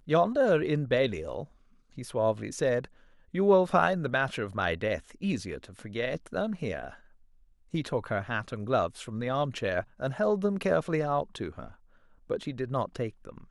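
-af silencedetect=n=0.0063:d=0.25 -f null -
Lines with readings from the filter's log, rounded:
silence_start: 1.45
silence_end: 1.97 | silence_duration: 0.53
silence_start: 2.85
silence_end: 3.34 | silence_duration: 0.49
silence_start: 6.95
silence_end: 7.74 | silence_duration: 0.78
silence_start: 11.74
silence_end: 12.30 | silence_duration: 0.56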